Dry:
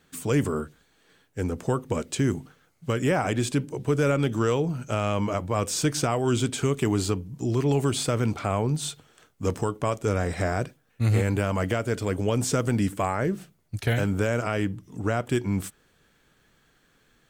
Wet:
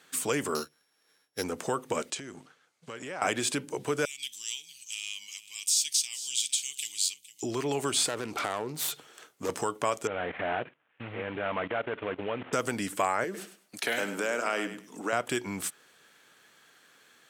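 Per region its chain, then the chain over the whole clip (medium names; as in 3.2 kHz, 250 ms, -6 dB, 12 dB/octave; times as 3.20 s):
0.55–1.44 s: sorted samples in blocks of 8 samples + upward expansion, over -50 dBFS
2.10–3.22 s: companding laws mixed up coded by A + low-pass 8.1 kHz + compression 10:1, threshold -35 dBFS
4.05–7.43 s: inverse Chebyshev high-pass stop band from 1.5 kHz + delay 457 ms -16.5 dB
8.07–9.49 s: self-modulated delay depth 0.23 ms + compression 3:1, threshold -30 dBFS + peaking EQ 370 Hz +4.5 dB 0.8 oct
10.07–12.53 s: CVSD coder 16 kbps + level held to a coarse grid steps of 15 dB
13.24–15.13 s: high-pass 190 Hz 24 dB/octave + compression 1.5:1, threshold -33 dBFS + feedback delay 102 ms, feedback 20%, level -11 dB
whole clip: peaking EQ 12 kHz +6.5 dB 1.2 oct; compression 2:1, threshold -28 dBFS; frequency weighting A; trim +4.5 dB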